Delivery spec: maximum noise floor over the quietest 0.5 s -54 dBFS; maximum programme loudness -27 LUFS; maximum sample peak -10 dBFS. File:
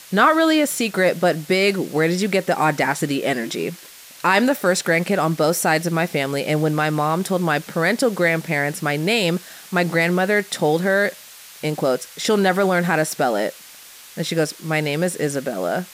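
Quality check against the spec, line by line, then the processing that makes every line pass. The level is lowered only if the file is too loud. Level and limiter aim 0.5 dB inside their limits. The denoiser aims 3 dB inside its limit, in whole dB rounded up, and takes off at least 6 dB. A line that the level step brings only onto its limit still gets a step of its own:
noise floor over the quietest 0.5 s -43 dBFS: fail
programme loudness -20.0 LUFS: fail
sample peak -4.0 dBFS: fail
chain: noise reduction 7 dB, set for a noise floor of -43 dBFS; trim -7.5 dB

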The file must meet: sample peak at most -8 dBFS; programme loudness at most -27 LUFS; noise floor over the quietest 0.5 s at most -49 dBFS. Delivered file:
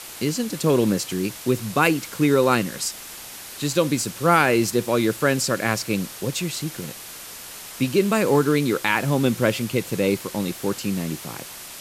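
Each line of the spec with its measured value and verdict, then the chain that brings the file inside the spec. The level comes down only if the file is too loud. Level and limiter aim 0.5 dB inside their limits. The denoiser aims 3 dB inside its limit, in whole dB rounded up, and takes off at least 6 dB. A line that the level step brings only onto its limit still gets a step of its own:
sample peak -4.0 dBFS: fail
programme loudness -22.0 LUFS: fail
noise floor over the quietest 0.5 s -38 dBFS: fail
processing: noise reduction 9 dB, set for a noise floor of -38 dBFS; trim -5.5 dB

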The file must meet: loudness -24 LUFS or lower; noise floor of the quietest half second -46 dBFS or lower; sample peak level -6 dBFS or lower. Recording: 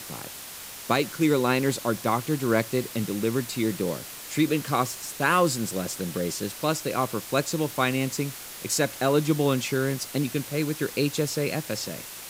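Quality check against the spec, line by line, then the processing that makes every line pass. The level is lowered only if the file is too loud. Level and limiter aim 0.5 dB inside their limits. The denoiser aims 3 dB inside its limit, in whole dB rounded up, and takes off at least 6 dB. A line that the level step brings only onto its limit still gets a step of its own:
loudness -26.5 LUFS: pass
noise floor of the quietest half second -40 dBFS: fail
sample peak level -8.5 dBFS: pass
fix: noise reduction 9 dB, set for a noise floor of -40 dBFS

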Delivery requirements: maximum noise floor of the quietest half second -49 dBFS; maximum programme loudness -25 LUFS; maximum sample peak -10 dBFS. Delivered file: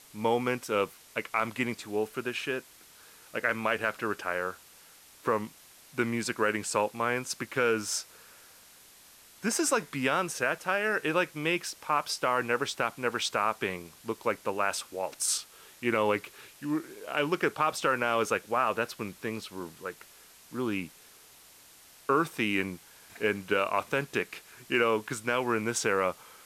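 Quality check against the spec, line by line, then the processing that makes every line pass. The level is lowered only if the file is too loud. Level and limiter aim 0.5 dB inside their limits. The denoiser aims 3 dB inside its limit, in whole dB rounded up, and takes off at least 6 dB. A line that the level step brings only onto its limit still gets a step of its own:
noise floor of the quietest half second -55 dBFS: pass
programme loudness -30.0 LUFS: pass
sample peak -13.5 dBFS: pass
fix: none needed

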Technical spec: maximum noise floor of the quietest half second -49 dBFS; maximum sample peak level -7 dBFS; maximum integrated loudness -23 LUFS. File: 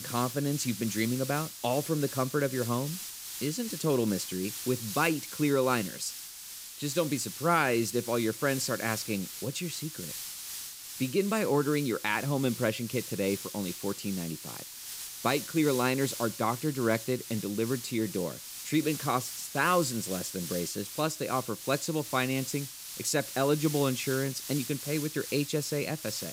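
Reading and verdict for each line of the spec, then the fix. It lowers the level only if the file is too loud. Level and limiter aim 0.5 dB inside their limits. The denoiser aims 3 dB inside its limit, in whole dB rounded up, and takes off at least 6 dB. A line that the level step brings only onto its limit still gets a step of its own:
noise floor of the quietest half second -45 dBFS: fail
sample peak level -12.5 dBFS: pass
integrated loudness -30.5 LUFS: pass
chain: noise reduction 7 dB, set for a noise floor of -45 dBFS

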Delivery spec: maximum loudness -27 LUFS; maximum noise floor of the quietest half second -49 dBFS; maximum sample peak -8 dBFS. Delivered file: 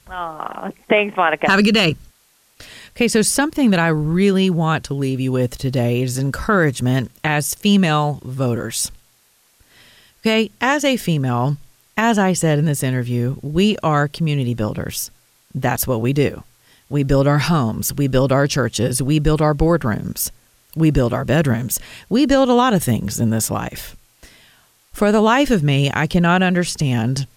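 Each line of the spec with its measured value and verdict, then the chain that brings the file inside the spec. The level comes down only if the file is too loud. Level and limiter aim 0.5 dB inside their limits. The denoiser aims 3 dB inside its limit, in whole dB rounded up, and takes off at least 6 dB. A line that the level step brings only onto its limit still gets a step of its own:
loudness -18.0 LUFS: fail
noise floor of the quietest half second -57 dBFS: pass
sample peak -4.0 dBFS: fail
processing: trim -9.5 dB

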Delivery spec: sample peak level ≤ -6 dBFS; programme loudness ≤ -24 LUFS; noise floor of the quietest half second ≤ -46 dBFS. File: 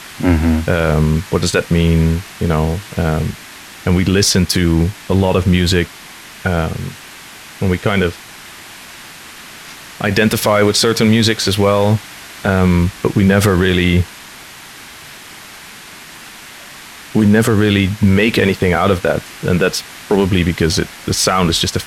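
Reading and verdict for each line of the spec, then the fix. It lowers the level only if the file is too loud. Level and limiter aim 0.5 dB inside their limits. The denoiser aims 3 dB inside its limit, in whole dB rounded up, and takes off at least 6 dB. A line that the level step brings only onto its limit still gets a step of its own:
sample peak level -1.5 dBFS: fail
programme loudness -15.0 LUFS: fail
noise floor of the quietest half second -36 dBFS: fail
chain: noise reduction 6 dB, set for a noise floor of -36 dBFS; trim -9.5 dB

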